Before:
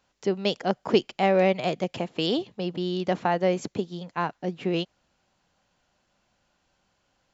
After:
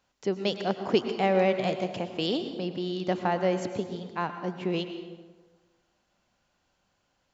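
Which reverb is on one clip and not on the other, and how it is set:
dense smooth reverb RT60 1.4 s, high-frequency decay 0.6×, pre-delay 90 ms, DRR 8 dB
level −3 dB

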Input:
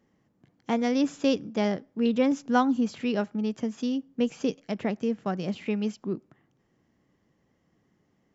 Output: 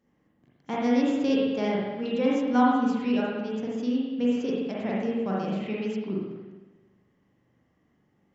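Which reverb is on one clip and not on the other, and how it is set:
spring reverb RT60 1.2 s, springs 41/57 ms, chirp 55 ms, DRR −5.5 dB
level −5.5 dB

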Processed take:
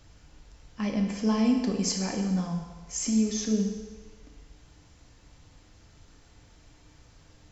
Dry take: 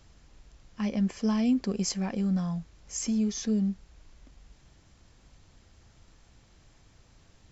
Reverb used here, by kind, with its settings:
feedback delay network reverb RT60 1.4 s, low-frequency decay 0.75×, high-frequency decay 0.95×, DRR 1.5 dB
level +1 dB

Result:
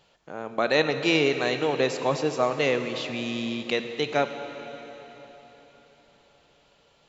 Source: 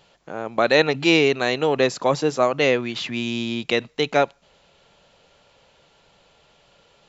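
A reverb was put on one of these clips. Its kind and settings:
dense smooth reverb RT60 4.2 s, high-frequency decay 0.95×, DRR 7.5 dB
level −5.5 dB

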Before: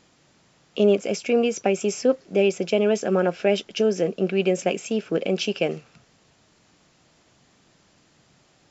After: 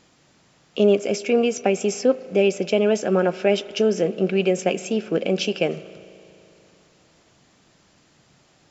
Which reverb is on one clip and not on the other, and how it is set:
spring reverb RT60 2.9 s, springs 37 ms, chirp 65 ms, DRR 16.5 dB
level +1.5 dB

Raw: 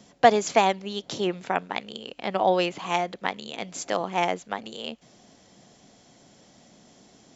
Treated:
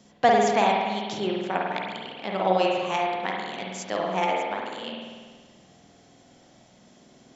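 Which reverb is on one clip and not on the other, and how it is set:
spring reverb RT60 1.5 s, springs 48 ms, chirp 25 ms, DRR −2 dB
level −3.5 dB

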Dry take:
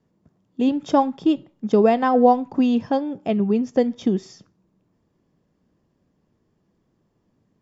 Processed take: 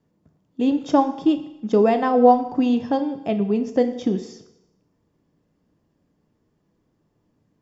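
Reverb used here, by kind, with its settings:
feedback delay network reverb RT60 0.91 s, low-frequency decay 0.8×, high-frequency decay 0.95×, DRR 8 dB
level −1 dB

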